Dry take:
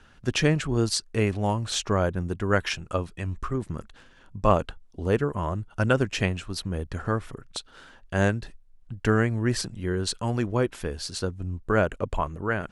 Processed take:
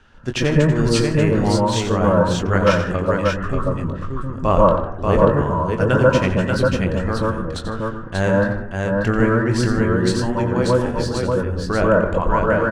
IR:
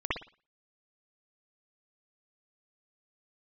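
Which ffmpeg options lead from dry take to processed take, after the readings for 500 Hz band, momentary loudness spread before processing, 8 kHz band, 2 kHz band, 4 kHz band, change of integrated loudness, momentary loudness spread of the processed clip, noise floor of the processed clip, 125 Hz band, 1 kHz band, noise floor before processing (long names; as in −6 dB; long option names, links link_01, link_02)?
+10.0 dB, 10 LU, +2.0 dB, +7.0 dB, +3.5 dB, +8.5 dB, 8 LU, −29 dBFS, +8.0 dB, +9.5 dB, −54 dBFS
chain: -filter_complex "[0:a]aecho=1:1:89|154|587:0.316|0.126|0.668,asplit=2[link_01][link_02];[1:a]atrim=start_sample=2205,asetrate=22050,aresample=44100,adelay=22[link_03];[link_02][link_03]afir=irnorm=-1:irlink=0,volume=-9.5dB[link_04];[link_01][link_04]amix=inputs=2:normalize=0,adynamicsmooth=sensitivity=8:basefreq=8000,volume=1.5dB"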